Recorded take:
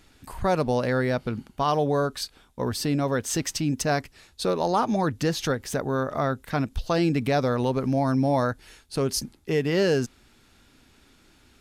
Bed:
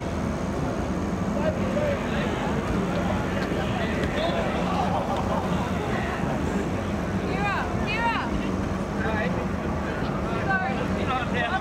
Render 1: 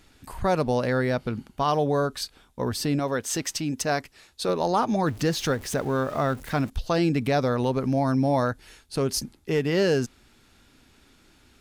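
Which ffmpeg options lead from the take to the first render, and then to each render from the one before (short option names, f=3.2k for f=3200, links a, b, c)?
-filter_complex "[0:a]asettb=1/sr,asplit=3[a][b][c];[a]atrim=end=2.994[d];[b]atrim=start=2.99:end=4.49,asetpts=PTS-STARTPTS,afade=t=in:d=0.004:c=qsin,afade=t=out:st=1.496:d=0.004:c=qsin,lowshelf=f=190:g=-8[e];[c]atrim=start=4.486[f];[d][e]acrossfade=d=0.004:c1=hsin:c2=qsin[g];[g][f]acrossfade=d=0.004:c1=qsin:c2=hsin,asettb=1/sr,asplit=3[h][i][j];[h]atrim=end=5.064[k];[i]atrim=start=5.06:end=6.7,asetpts=PTS-STARTPTS,afade=t=in:d=0.004:c=qsin,afade=t=out:st=1.636:d=0.004:c=qsin,aeval=exprs='val(0)+0.5*0.0112*sgn(val(0))':c=same[l];[j]atrim=start=6.696[m];[k][l]acrossfade=d=0.004:c1=hsin:c2=qsin[n];[n][m]acrossfade=d=0.004:c1=qsin:c2=hsin,asettb=1/sr,asplit=3[o][p][q];[o]atrim=end=8.474[r];[p]atrim=start=8.47:end=9.65,asetpts=PTS-STARTPTS,afade=t=in:d=0.004:c=qsin,afade=t=out:st=1.176:d=0.004:c=qsin,aeval=exprs='clip(val(0),-1,0.106)':c=same[s];[q]atrim=start=9.646[t];[r][s]acrossfade=d=0.004:c1=hsin:c2=qsin[u];[u][t]acrossfade=d=0.004:c1=qsin:c2=hsin"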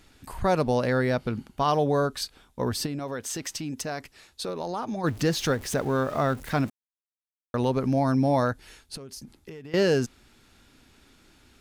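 -filter_complex "[0:a]asplit=3[a][b][c];[a]afade=t=out:st=2.85:d=0.02[d];[b]acompressor=threshold=-30dB:ratio=3:attack=3.2:release=140:knee=1:detection=peak,afade=t=in:st=2.85:d=0.02,afade=t=out:st=5.03:d=0.02[e];[c]afade=t=in:st=5.03:d=0.02[f];[d][e][f]amix=inputs=3:normalize=0,asettb=1/sr,asplit=3[g][h][i];[g]atrim=end=8.954[j];[h]atrim=start=8.95:end=9.74,asetpts=PTS-STARTPTS,afade=t=in:d=0.004:c=qsin,afade=t=out:st=0.786:d=0.004:c=qsin,acompressor=threshold=-37dB:ratio=16:attack=3.2:release=140:knee=1:detection=peak[k];[i]atrim=start=9.736[l];[j][k]acrossfade=d=0.004:c1=hsin:c2=qsin[m];[m][l]acrossfade=d=0.004:c1=qsin:c2=hsin,asplit=3[n][o][p];[n]atrim=end=6.7,asetpts=PTS-STARTPTS,afade=t=out:st=6.696:d=0.004:c=hsin[q];[o]atrim=start=6.7:end=7.54,asetpts=PTS-STARTPTS,volume=0[r];[p]atrim=start=7.54,asetpts=PTS-STARTPTS,afade=t=in:d=0.004:c=hsin[s];[q][r][s]concat=n=3:v=0:a=1"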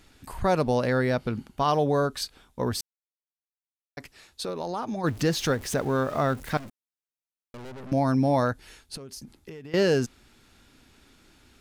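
-filter_complex "[0:a]asettb=1/sr,asplit=3[a][b][c];[a]atrim=end=6.574[d];[b]atrim=start=6.57:end=7.92,asetpts=PTS-STARTPTS,afade=t=in:d=0.004:c=qsin,afade=t=out:st=1.346:d=0.004:c=qsin,aeval=exprs='(tanh(100*val(0)+0.7)-tanh(0.7))/100':c=same[e];[c]atrim=start=7.916[f];[d][e]acrossfade=d=0.004:c1=hsin:c2=qsin[g];[g][f]acrossfade=d=0.004:c1=qsin:c2=hsin,asplit=3[h][i][j];[h]atrim=end=2.81,asetpts=PTS-STARTPTS,afade=t=out:st=2.806:d=0.004:c=hsin[k];[i]atrim=start=2.81:end=3.97,asetpts=PTS-STARTPTS,volume=0[l];[j]atrim=start=3.97,asetpts=PTS-STARTPTS,afade=t=in:d=0.004:c=hsin[m];[k][l][m]concat=n=3:v=0:a=1"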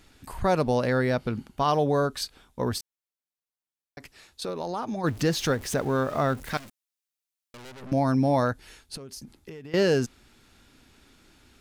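-filter_complex "[0:a]asettb=1/sr,asplit=3[a][b][c];[a]atrim=end=2.784[d];[b]atrim=start=2.78:end=4.42,asetpts=PTS-STARTPTS,afade=t=in:d=0.004:c=qsin,afade=t=out:st=1.636:d=0.004:c=qsin,acompressor=threshold=-38dB:ratio=2.5:attack=3.2:release=140:knee=1:detection=peak[e];[c]atrim=start=4.416[f];[d][e]acrossfade=d=0.004:c1=hsin:c2=qsin[g];[g][f]acrossfade=d=0.004:c1=qsin:c2=hsin,asettb=1/sr,asplit=3[h][i][j];[h]atrim=end=6.534[k];[i]atrim=start=6.53:end=7.82,asetpts=PTS-STARTPTS,afade=t=in:d=0.004:c=qsin,afade=t=out:st=1.286:d=0.004:c=qsin,tiltshelf=f=1.4k:g=-6[l];[j]atrim=start=7.816[m];[k][l]acrossfade=d=0.004:c1=hsin:c2=qsin[n];[n][m]acrossfade=d=0.004:c1=qsin:c2=hsin"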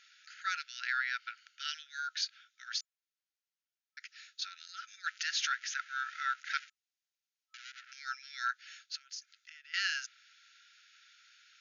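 -af "afftfilt=real='re*between(b*sr/4096,1300,7000)':imag='im*between(b*sr/4096,1300,7000)':win_size=4096:overlap=0.75,adynamicequalizer=threshold=0.00447:dfrequency=3600:dqfactor=0.7:tfrequency=3600:tqfactor=0.7:attack=5:release=100:ratio=0.375:range=3:mode=cutabove:tftype=highshelf"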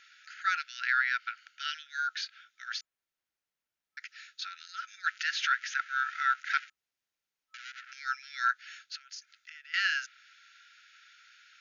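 -filter_complex "[0:a]acrossover=split=2500|3100|3600[a][b][c][d];[a]acontrast=78[e];[d]alimiter=level_in=12dB:limit=-24dB:level=0:latency=1:release=158,volume=-12dB[f];[e][b][c][f]amix=inputs=4:normalize=0"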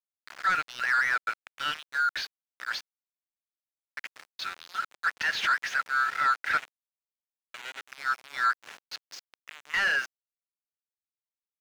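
-filter_complex "[0:a]aeval=exprs='val(0)*gte(abs(val(0)),0.00841)':c=same,asplit=2[a][b];[b]highpass=f=720:p=1,volume=19dB,asoftclip=type=tanh:threshold=-14dB[c];[a][c]amix=inputs=2:normalize=0,lowpass=f=1.5k:p=1,volume=-6dB"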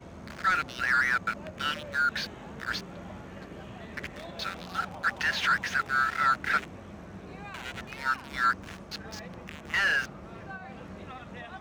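-filter_complex "[1:a]volume=-17.5dB[a];[0:a][a]amix=inputs=2:normalize=0"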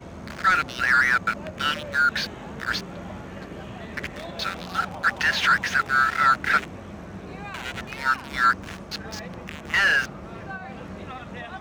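-af "volume=6dB"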